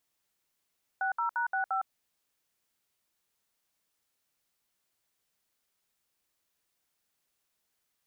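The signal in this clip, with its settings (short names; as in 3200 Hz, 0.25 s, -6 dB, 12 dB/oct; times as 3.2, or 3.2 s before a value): DTMF "60#65", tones 0.109 s, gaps 65 ms, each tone -30 dBFS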